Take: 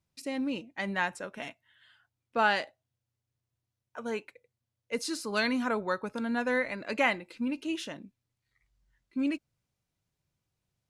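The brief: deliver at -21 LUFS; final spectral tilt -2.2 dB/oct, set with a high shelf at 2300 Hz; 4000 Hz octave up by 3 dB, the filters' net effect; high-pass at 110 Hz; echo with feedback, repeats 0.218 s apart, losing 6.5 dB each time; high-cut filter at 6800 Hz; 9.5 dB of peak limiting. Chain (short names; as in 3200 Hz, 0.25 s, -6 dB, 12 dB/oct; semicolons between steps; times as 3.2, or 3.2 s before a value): HPF 110 Hz; LPF 6800 Hz; high shelf 2300 Hz -3.5 dB; bell 4000 Hz +7.5 dB; limiter -21 dBFS; feedback echo 0.218 s, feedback 47%, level -6.5 dB; gain +12.5 dB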